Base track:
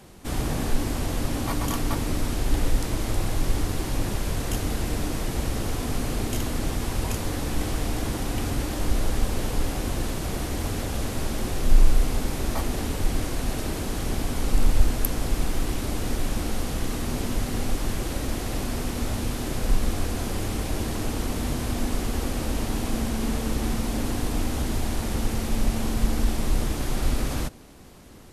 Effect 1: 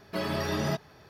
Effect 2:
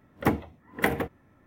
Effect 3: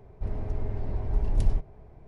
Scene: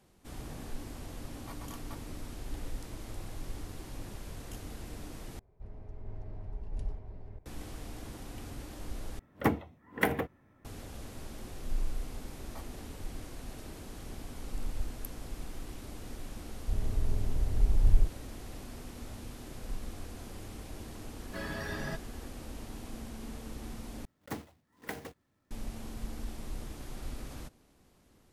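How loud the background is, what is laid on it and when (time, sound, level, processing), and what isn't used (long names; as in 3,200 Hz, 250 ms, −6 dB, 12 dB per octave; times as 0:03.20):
base track −16.5 dB
0:05.39: overwrite with 3 −15 dB + delay that plays each chunk backwards 666 ms, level −0.5 dB
0:09.19: overwrite with 2 −3.5 dB
0:16.47: mix in 3 −9 dB + spectral tilt −2 dB per octave
0:21.20: mix in 1 −10.5 dB + parametric band 1,700 Hz +13 dB 0.22 octaves
0:24.05: overwrite with 2 −16 dB + one scale factor per block 3 bits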